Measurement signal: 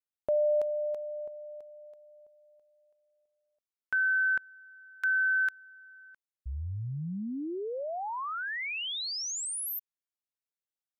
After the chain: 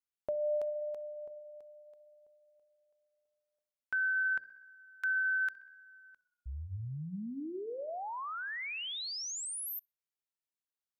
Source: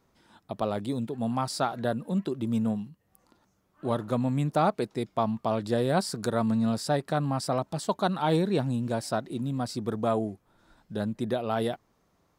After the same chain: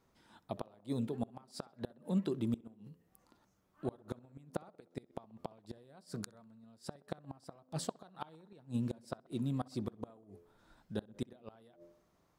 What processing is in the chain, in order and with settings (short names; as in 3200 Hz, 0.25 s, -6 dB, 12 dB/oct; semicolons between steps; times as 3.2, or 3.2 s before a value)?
de-hum 85.84 Hz, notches 7; flipped gate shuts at -19 dBFS, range -29 dB; tape echo 64 ms, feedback 73%, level -22 dB, low-pass 2900 Hz; gain -4.5 dB